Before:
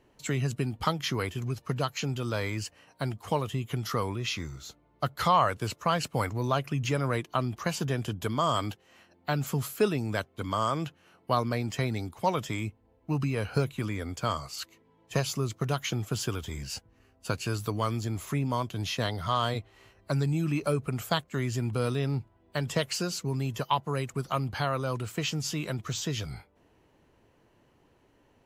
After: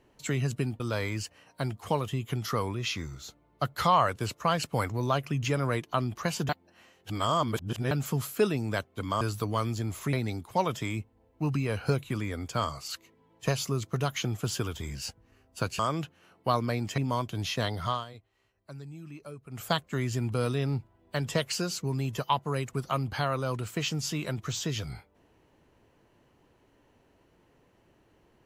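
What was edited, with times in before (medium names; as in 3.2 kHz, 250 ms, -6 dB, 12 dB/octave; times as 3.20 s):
0.80–2.21 s: delete
7.90–9.32 s: reverse
10.62–11.81 s: swap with 17.47–18.39 s
19.28–21.08 s: dip -16 dB, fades 0.18 s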